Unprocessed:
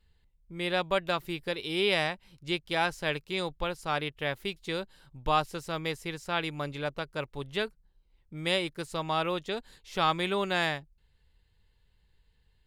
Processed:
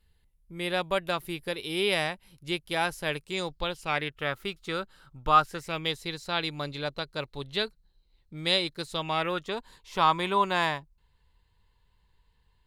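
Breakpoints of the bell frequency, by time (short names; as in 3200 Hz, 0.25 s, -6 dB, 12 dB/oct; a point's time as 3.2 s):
bell +13.5 dB 0.29 oct
3.14 s 11000 Hz
4.19 s 1300 Hz
5.38 s 1300 Hz
6.01 s 4100 Hz
8.87 s 4100 Hz
9.54 s 1000 Hz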